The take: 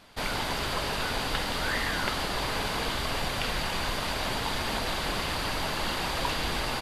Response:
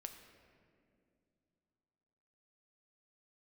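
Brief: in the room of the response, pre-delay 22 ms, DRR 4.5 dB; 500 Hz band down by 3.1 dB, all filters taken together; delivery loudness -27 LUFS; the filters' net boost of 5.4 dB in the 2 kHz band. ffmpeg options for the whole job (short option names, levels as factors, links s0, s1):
-filter_complex "[0:a]equalizer=f=500:t=o:g=-4.5,equalizer=f=2000:t=o:g=7,asplit=2[s0][s1];[1:a]atrim=start_sample=2205,adelay=22[s2];[s1][s2]afir=irnorm=-1:irlink=0,volume=1[s3];[s0][s3]amix=inputs=2:normalize=0,volume=0.891"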